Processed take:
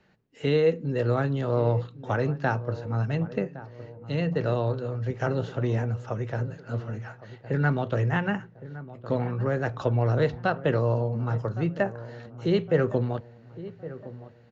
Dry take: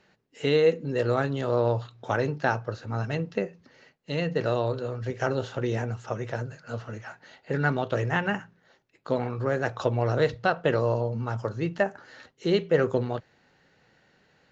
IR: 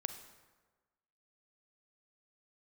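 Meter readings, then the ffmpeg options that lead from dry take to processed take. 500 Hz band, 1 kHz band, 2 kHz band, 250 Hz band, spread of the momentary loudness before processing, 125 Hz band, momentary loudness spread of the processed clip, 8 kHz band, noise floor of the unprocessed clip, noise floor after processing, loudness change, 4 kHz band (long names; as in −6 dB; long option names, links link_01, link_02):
−1.0 dB, −1.5 dB, −2.5 dB, +1.5 dB, 10 LU, +4.0 dB, 16 LU, can't be measured, −65 dBFS, −52 dBFS, +0.5 dB, −4.0 dB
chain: -filter_complex "[0:a]highshelf=frequency=4900:gain=-8.5,acrossover=split=220|990[link_01][link_02][link_03];[link_01]acontrast=49[link_04];[link_04][link_02][link_03]amix=inputs=3:normalize=0,asplit=2[link_05][link_06];[link_06]adelay=1113,lowpass=frequency=1200:poles=1,volume=-15dB,asplit=2[link_07][link_08];[link_08]adelay=1113,lowpass=frequency=1200:poles=1,volume=0.48,asplit=2[link_09][link_10];[link_10]adelay=1113,lowpass=frequency=1200:poles=1,volume=0.48,asplit=2[link_11][link_12];[link_12]adelay=1113,lowpass=frequency=1200:poles=1,volume=0.48[link_13];[link_05][link_07][link_09][link_11][link_13]amix=inputs=5:normalize=0,volume=-1.5dB"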